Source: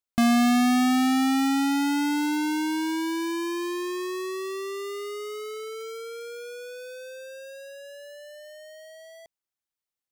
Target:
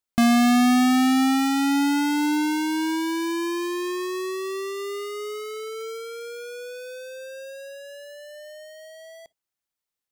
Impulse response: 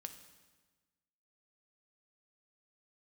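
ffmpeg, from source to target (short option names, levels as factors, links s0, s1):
-filter_complex "[0:a]asplit=2[s0][s1];[1:a]atrim=start_sample=2205,atrim=end_sample=3087[s2];[s1][s2]afir=irnorm=-1:irlink=0,volume=0.631[s3];[s0][s3]amix=inputs=2:normalize=0"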